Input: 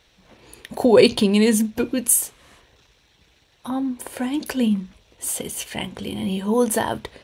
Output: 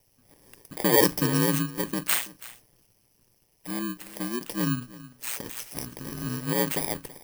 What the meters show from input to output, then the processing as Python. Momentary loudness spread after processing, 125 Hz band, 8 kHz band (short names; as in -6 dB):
16 LU, 0.0 dB, -8.0 dB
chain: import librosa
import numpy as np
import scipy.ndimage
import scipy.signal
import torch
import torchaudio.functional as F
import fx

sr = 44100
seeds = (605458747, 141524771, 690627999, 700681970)

y = fx.bit_reversed(x, sr, seeds[0], block=32)
y = y * np.sin(2.0 * np.pi * 60.0 * np.arange(len(y)) / sr)
y = y + 10.0 ** (-18.5 / 20.0) * np.pad(y, (int(329 * sr / 1000.0), 0))[:len(y)]
y = F.gain(torch.from_numpy(y), -4.0).numpy()